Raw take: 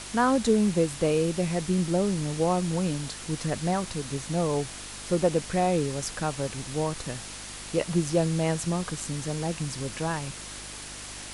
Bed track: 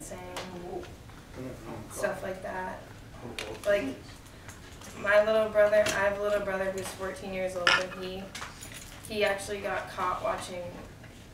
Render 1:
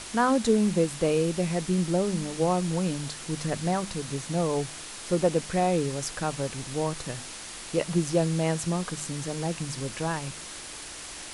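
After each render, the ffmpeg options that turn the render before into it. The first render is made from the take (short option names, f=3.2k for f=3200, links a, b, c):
-af "bandreject=f=50:t=h:w=4,bandreject=f=100:t=h:w=4,bandreject=f=150:t=h:w=4,bandreject=f=200:t=h:w=4,bandreject=f=250:t=h:w=4"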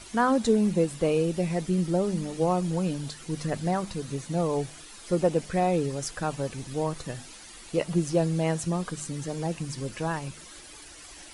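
-af "afftdn=nr=11:nf=-41"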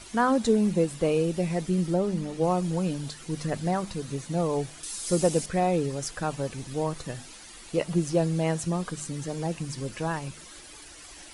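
-filter_complex "[0:a]asettb=1/sr,asplit=3[a][b][c];[a]atrim=end=1.944[d];[b]atrim=start=1.94:end=2.44,asetpts=PTS-STARTPTS,afade=t=in:d=0.004:c=qsin,afade=t=out:st=0.496:d=0.004:c=qsin,highshelf=f=5.6k:g=-7[e];[c]atrim=start=2.436[f];[d][e]acrossfade=d=0.004:c1=hsin:c2=qsin[g];[g][f]acrossfade=d=0.004:c1=qsin:c2=hsin,asettb=1/sr,asplit=3[h][i][j];[h]atrim=end=4.834[k];[i]atrim=start=4.83:end=5.46,asetpts=PTS-STARTPTS,afade=t=in:d=0.004:c=qsin,afade=t=out:st=0.626:d=0.004:c=qsin,bass=f=250:g=2,treble=f=4k:g=14[l];[j]atrim=start=5.456[m];[k][l]acrossfade=d=0.004:c1=hsin:c2=qsin[n];[n][m]acrossfade=d=0.004:c1=qsin:c2=hsin"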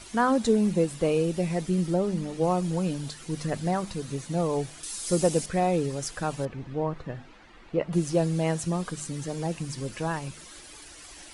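-filter_complex "[0:a]asettb=1/sr,asplit=3[a][b][c];[a]atrim=end=6.454[d];[b]atrim=start=6.45:end=7.93,asetpts=PTS-STARTPTS,afade=t=in:d=0.004:c=qsin,afade=t=out:st=1.476:d=0.004:c=qsin,lowpass=2k[e];[c]atrim=start=7.926[f];[d][e]acrossfade=d=0.004:c1=hsin:c2=qsin[g];[g][f]acrossfade=d=0.004:c1=qsin:c2=hsin"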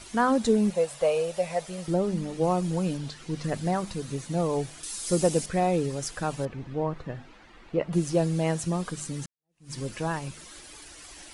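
-filter_complex "[0:a]asettb=1/sr,asplit=3[a][b][c];[a]atrim=end=0.704[d];[b]atrim=start=0.7:end=1.88,asetpts=PTS-STARTPTS,afade=t=in:d=0.004:c=qsin,afade=t=out:st=1.176:d=0.004:c=qsin,lowshelf=f=430:t=q:w=3:g=-10.5[e];[c]atrim=start=1.876[f];[d][e]acrossfade=d=0.004:c1=hsin:c2=qsin[g];[g][f]acrossfade=d=0.004:c1=qsin:c2=hsin,asettb=1/sr,asplit=3[h][i][j];[h]atrim=end=2.974[k];[i]atrim=start=2.97:end=3.44,asetpts=PTS-STARTPTS,afade=t=in:d=0.004:c=qsin,afade=t=out:st=0.466:d=0.004:c=qsin,acrossover=split=6300[l][m];[m]acompressor=threshold=-60dB:ratio=4:attack=1:release=60[n];[l][n]amix=inputs=2:normalize=0[o];[j]atrim=start=3.436[p];[k][o]acrossfade=d=0.004:c1=hsin:c2=qsin[q];[q][p]acrossfade=d=0.004:c1=qsin:c2=hsin,asplit=2[r][s];[r]atrim=end=9.26,asetpts=PTS-STARTPTS,afade=t=out:st=9.256:d=0.004:c=hsin[t];[s]atrim=start=9.26,asetpts=PTS-STARTPTS,afade=t=in:d=0.47:c=exp[u];[t][u]concat=n=2:v=0:a=1"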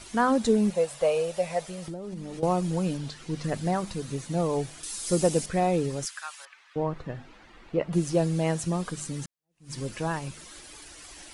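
-filter_complex "[0:a]asettb=1/sr,asplit=3[a][b][c];[a]atrim=end=1.634[d];[b]atrim=start=1.63:end=2.43,asetpts=PTS-STARTPTS,afade=t=in:d=0.004:c=qsin,afade=t=out:st=0.796:d=0.004:c=qsin,acompressor=threshold=-32dB:ratio=16:attack=3.2:release=140:knee=1:detection=peak[e];[c]atrim=start=2.426[f];[d][e]acrossfade=d=0.004:c1=hsin:c2=qsin[g];[g][f]acrossfade=d=0.004:c1=qsin:c2=hsin,asettb=1/sr,asplit=3[h][i][j];[h]atrim=end=6.054[k];[i]atrim=start=6.05:end=6.76,asetpts=PTS-STARTPTS,afade=t=in:d=0.004:c=qsin,afade=t=out:st=0.706:d=0.004:c=qsin,highpass=f=1.2k:w=0.5412,highpass=f=1.2k:w=1.3066[l];[j]atrim=start=6.756[m];[k][l]acrossfade=d=0.004:c1=hsin:c2=qsin[n];[n][m]acrossfade=d=0.004:c1=qsin:c2=hsin"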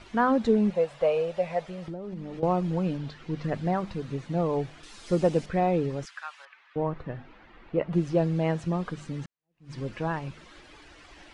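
-af "lowpass=2.9k"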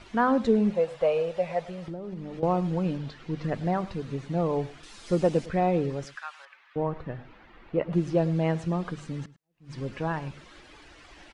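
-filter_complex "[0:a]asplit=2[a][b];[b]adelay=105,volume=-18dB,highshelf=f=4k:g=-2.36[c];[a][c]amix=inputs=2:normalize=0"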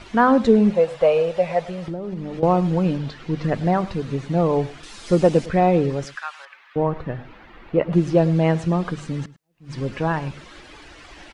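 -af "volume=7.5dB"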